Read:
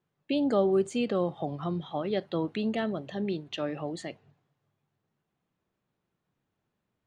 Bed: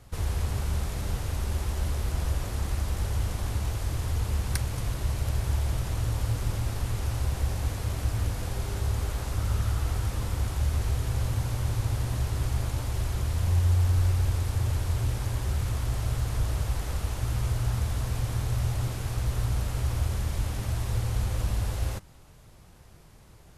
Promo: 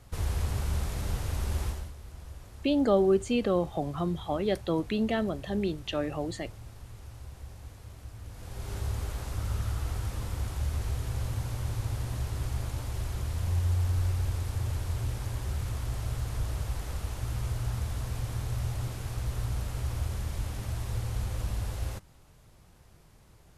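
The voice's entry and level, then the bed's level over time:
2.35 s, +1.5 dB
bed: 0:01.67 −1.5 dB
0:01.94 −16.5 dB
0:08.22 −16.5 dB
0:08.73 −4.5 dB

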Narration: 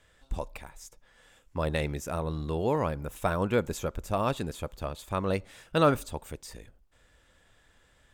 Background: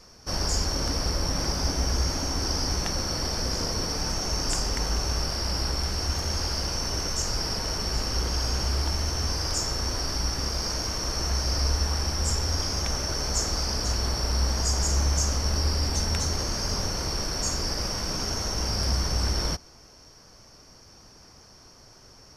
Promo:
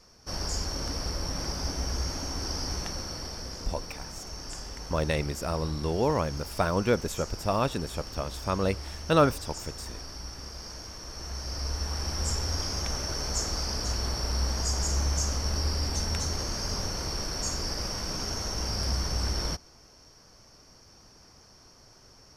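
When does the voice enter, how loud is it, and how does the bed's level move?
3.35 s, +1.5 dB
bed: 0:02.77 −5.5 dB
0:03.75 −12.5 dB
0:11.06 −12.5 dB
0:12.19 −3.5 dB

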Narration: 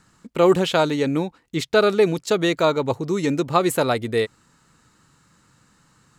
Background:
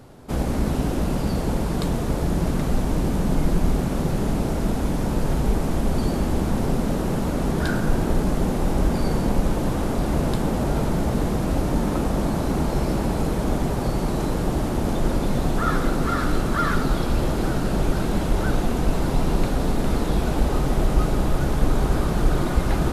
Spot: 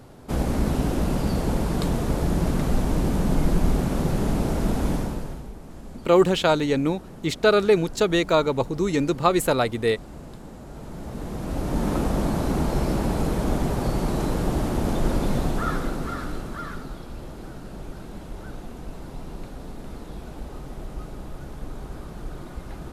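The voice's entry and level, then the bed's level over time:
5.70 s, −1.0 dB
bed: 0:04.94 −0.5 dB
0:05.52 −18.5 dB
0:10.66 −18.5 dB
0:11.89 −1 dB
0:15.33 −1 dB
0:17.02 −15.5 dB

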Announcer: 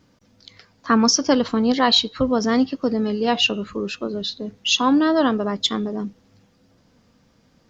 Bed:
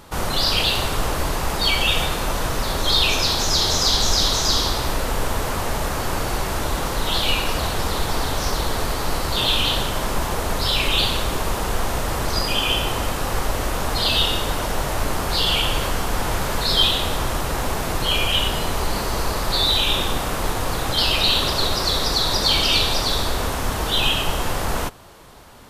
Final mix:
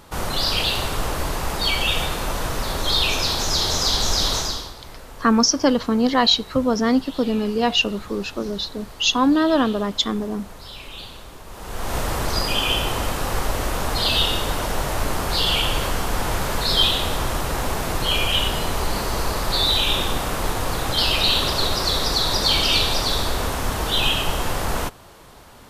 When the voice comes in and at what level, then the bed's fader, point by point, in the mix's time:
4.35 s, 0.0 dB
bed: 0:04.38 −2 dB
0:04.76 −17.5 dB
0:11.46 −17.5 dB
0:11.96 −0.5 dB

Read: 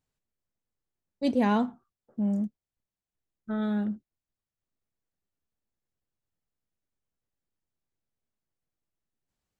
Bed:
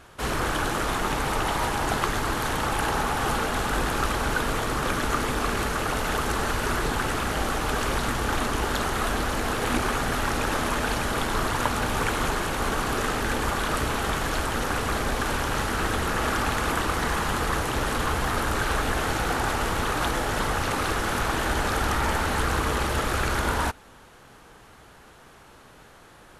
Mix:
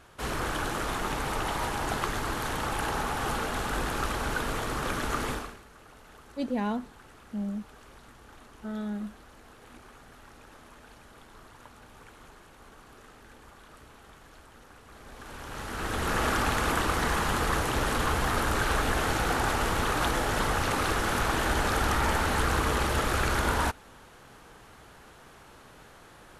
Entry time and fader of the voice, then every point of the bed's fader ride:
5.15 s, −5.5 dB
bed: 0:05.33 −5 dB
0:05.62 −26 dB
0:14.84 −26 dB
0:16.13 −1.5 dB

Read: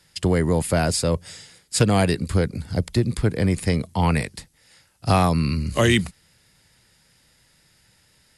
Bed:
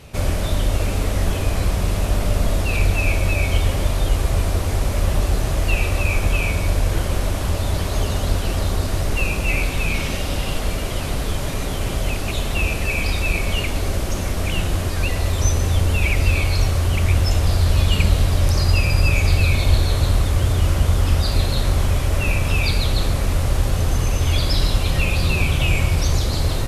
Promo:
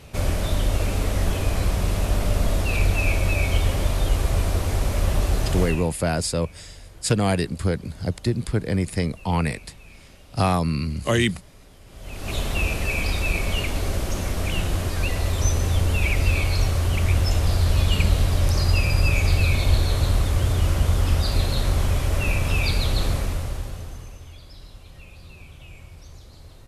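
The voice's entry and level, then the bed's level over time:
5.30 s, −2.5 dB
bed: 0:05.62 −2.5 dB
0:05.98 −25.5 dB
0:11.85 −25.5 dB
0:12.34 −3 dB
0:23.13 −3 dB
0:24.38 −25.5 dB

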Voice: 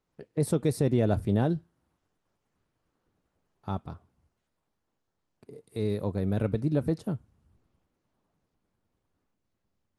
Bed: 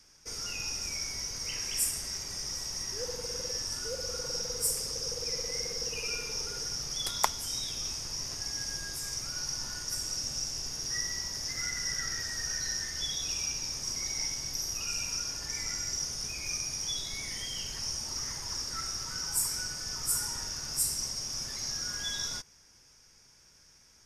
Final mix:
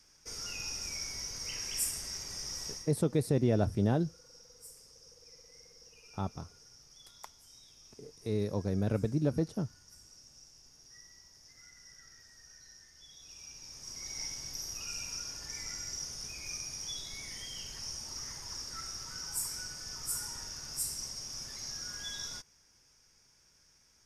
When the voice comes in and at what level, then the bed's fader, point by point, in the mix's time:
2.50 s, −3.0 dB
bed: 0:02.71 −3.5 dB
0:03.01 −22 dB
0:13.03 −22 dB
0:14.21 −6 dB

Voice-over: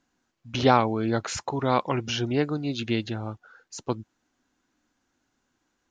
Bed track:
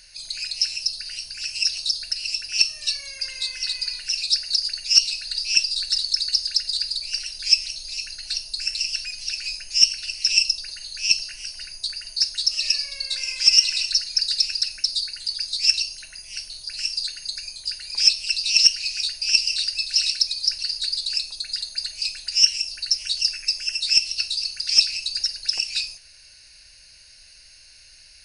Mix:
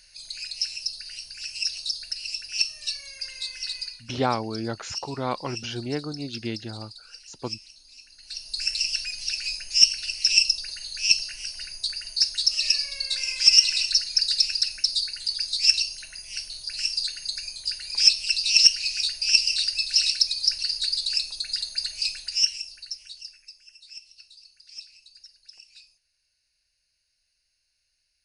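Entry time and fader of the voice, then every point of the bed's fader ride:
3.55 s, −5.0 dB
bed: 0:03.82 −5.5 dB
0:04.07 −18.5 dB
0:08.08 −18.5 dB
0:08.59 −0.5 dB
0:22.11 −0.5 dB
0:23.61 −25 dB

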